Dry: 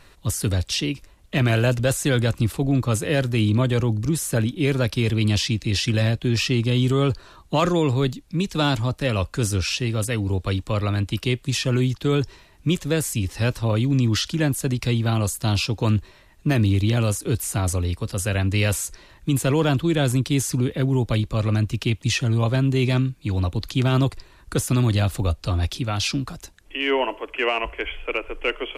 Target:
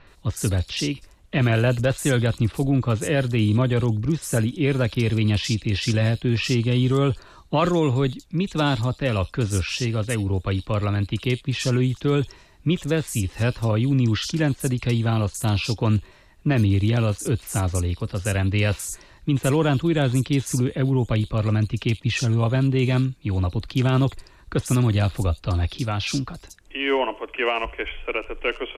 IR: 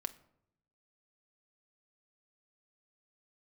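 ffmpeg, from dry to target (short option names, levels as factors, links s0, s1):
-filter_complex "[0:a]highshelf=f=11000:g=-9,acrossover=split=4300[s0][s1];[s1]adelay=70[s2];[s0][s2]amix=inputs=2:normalize=0"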